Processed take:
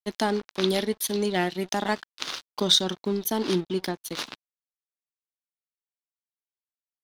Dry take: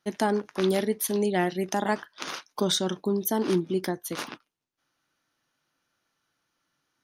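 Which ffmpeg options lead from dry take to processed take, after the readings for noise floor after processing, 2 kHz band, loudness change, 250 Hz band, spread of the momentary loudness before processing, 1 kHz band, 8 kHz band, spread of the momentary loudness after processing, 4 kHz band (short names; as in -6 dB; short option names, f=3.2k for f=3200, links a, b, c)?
under -85 dBFS, +1.0 dB, +1.0 dB, -1.0 dB, 10 LU, -0.5 dB, +1.0 dB, 13 LU, +7.5 dB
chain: -af "aeval=exprs='sgn(val(0))*max(abs(val(0))-0.0075,0)':c=same,equalizer=f=3.9k:w=1.3:g=9.5"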